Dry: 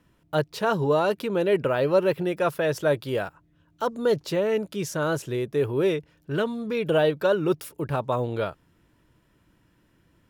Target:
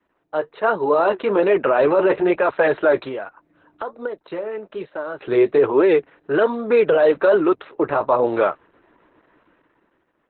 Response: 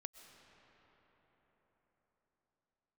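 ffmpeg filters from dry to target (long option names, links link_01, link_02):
-filter_complex "[0:a]flanger=delay=3.1:depth=7:regen=-54:speed=1.2:shape=sinusoidal,adynamicequalizer=threshold=0.00891:dfrequency=520:dqfactor=2.7:tfrequency=520:tqfactor=2.7:attack=5:release=100:ratio=0.375:range=3:mode=cutabove:tftype=bell,dynaudnorm=framelen=220:gausssize=9:maxgain=13dB,aexciter=amount=9:drive=7.9:freq=5200,acrossover=split=330 2100:gain=0.0631 1 0.141[link_01][link_02][link_03];[link_01][link_02][link_03]amix=inputs=3:normalize=0,asettb=1/sr,asplit=3[link_04][link_05][link_06];[link_04]atrim=end=3.074[link_07];[link_05]atrim=start=3.07:end=5.21,asetpts=PTS-STARTPTS,afade=type=in:duration=0.004:curve=qsin,afade=type=out:start_time=2.136:duration=0.004:curve=qsin,acompressor=threshold=-35dB:ratio=6[link_08];[link_06]atrim=start=5.206[link_09];[link_07][link_08]acrossfade=duration=0.004:curve1=hsin:curve2=qsin[link_10];[link_10][link_09]acrossfade=duration=0.004:curve1=qsin:curve2=hsin,alimiter=limit=-16dB:level=0:latency=1:release=10,volume=8.5dB" -ar 48000 -c:a libopus -b:a 8k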